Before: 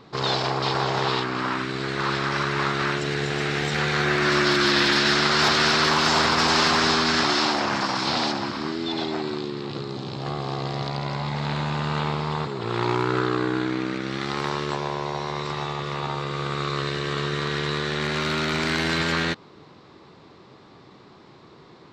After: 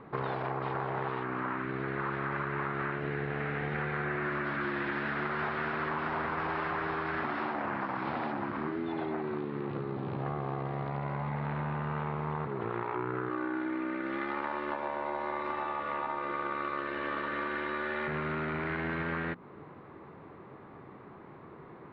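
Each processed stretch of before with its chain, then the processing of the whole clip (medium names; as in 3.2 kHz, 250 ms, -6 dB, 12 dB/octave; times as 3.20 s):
13.29–18.08 s: tone controls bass -9 dB, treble +4 dB + comb 3.4 ms, depth 77%
whole clip: low-pass 2.1 kHz 24 dB/octave; hum notches 60/120/180/240/300/360 Hz; compression, threshold -31 dBFS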